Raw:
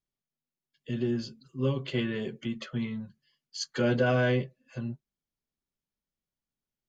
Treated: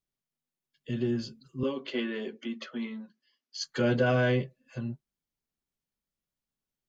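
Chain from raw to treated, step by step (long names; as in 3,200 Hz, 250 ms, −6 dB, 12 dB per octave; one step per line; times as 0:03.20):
0:01.63–0:03.64: elliptic band-pass filter 240–6,000 Hz, stop band 40 dB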